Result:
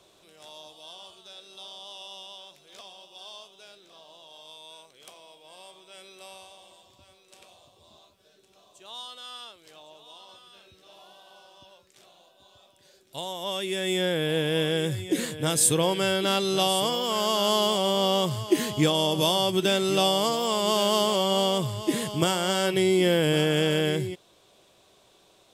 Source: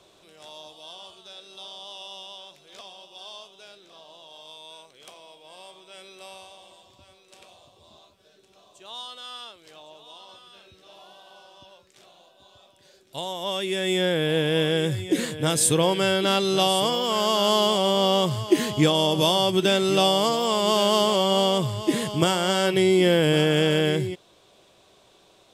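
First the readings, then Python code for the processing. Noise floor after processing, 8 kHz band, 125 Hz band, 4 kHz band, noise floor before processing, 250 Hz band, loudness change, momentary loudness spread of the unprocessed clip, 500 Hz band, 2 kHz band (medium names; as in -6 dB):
-60 dBFS, 0.0 dB, -3.0 dB, -2.5 dB, -58 dBFS, -3.0 dB, -2.5 dB, 19 LU, -3.0 dB, -2.5 dB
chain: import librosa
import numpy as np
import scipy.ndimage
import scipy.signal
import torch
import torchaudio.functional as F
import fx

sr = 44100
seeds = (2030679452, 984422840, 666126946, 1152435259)

y = fx.high_shelf(x, sr, hz=8900.0, db=7.0)
y = y * librosa.db_to_amplitude(-3.0)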